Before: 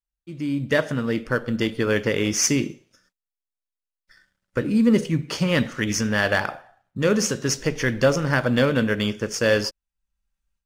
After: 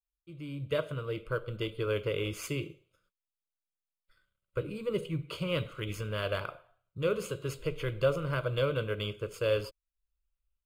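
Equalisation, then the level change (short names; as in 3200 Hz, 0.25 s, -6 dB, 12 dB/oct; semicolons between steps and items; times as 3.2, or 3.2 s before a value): tone controls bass +4 dB, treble -1 dB; fixed phaser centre 1200 Hz, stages 8; -8.0 dB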